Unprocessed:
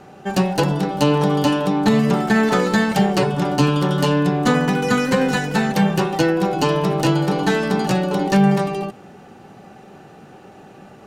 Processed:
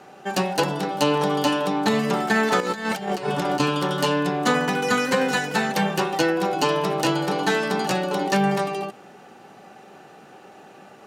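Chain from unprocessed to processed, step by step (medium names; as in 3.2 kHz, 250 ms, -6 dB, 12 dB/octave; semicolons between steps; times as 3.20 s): high-pass 470 Hz 6 dB/octave; 2.60–3.60 s: compressor with a negative ratio -25 dBFS, ratio -0.5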